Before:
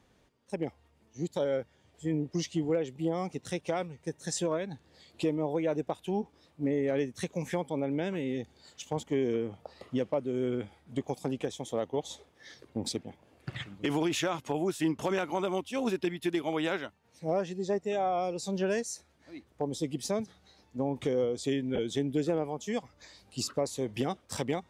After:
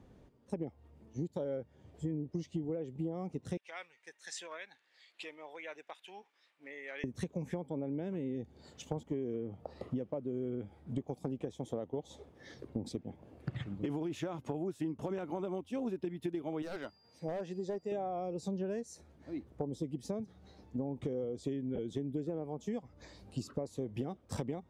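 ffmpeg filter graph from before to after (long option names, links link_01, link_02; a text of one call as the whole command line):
ffmpeg -i in.wav -filter_complex "[0:a]asettb=1/sr,asplit=3[link_01][link_02][link_03];[link_01]atrim=end=3.574[link_04];[link_02]atrim=start=3.57:end=7.04,asetpts=PTS-STARTPTS,afade=type=in:duration=0.004:curve=qsin,afade=type=out:start_time=3.466:duration=0.004:curve=qsin,highpass=frequency=2000:width_type=q:width=1.7,highshelf=frequency=7000:gain=-8.5[link_05];[link_03]atrim=start=7.036[link_06];[link_04][link_05]acrossfade=duration=0.004:curve1=hsin:curve2=qsin[link_07];[link_07][link_06]acrossfade=duration=0.004:curve1=qsin:curve2=hsin,asettb=1/sr,asplit=3[link_08][link_09][link_10];[link_08]atrim=end=16.624[link_11];[link_09]atrim=start=16.62:end=17.92,asetpts=PTS-STARTPTS,afade=type=in:duration=0.004:curve=qsin,afade=type=out:start_time=1.296:duration=0.004:curve=qsin,lowshelf=frequency=390:gain=-11.5,aeval=exprs='val(0)+0.001*sin(2*PI*4800*n/s)':channel_layout=same,aeval=exprs='0.0376*(abs(mod(val(0)/0.0376+3,4)-2)-1)':channel_layout=same[link_12];[link_10]atrim=start=17.916[link_13];[link_11][link_12]acrossfade=duration=0.004:curve1=hsin:curve2=qsin[link_14];[link_14][link_13]acrossfade=duration=0.004:curve1=qsin:curve2=hsin,tiltshelf=frequency=900:gain=8,acompressor=threshold=-36dB:ratio=6,volume=1dB" out.wav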